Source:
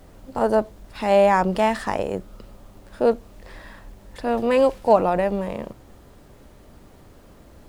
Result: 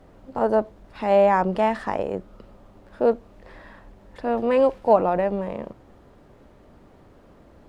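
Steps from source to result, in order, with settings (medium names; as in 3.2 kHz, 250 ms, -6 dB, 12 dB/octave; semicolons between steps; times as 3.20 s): low-pass 1.7 kHz 6 dB/octave; bass shelf 130 Hz -6.5 dB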